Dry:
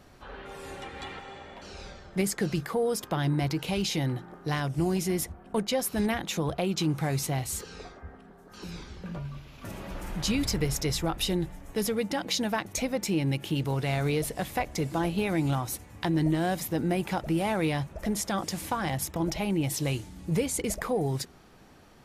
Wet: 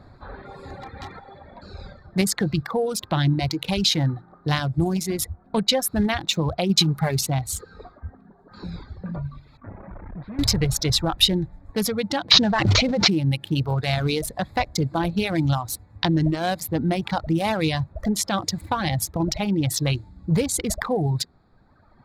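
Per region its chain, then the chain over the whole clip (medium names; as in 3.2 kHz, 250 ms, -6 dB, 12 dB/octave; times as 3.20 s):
6.69–7.21 s: treble shelf 6.9 kHz +5 dB + comb 4.9 ms, depth 55%
9.57–10.39 s: valve stage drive 38 dB, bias 0.8 + low-pass 2.3 kHz 24 dB/octave
12.31–13.11 s: CVSD coder 32 kbps + level flattener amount 100%
whole clip: local Wiener filter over 15 samples; reverb removal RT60 1.6 s; fifteen-band graphic EQ 100 Hz +7 dB, 400 Hz -4 dB, 4 kHz +10 dB; trim +7 dB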